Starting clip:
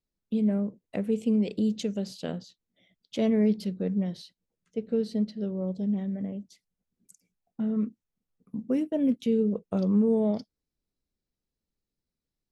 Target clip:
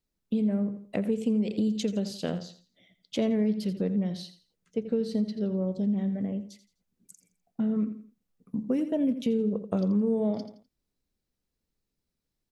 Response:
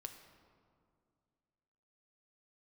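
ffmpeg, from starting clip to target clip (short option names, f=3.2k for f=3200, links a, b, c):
-af "aecho=1:1:84|168|252:0.224|0.0694|0.0215,acompressor=threshold=-28dB:ratio=3,volume=3.5dB"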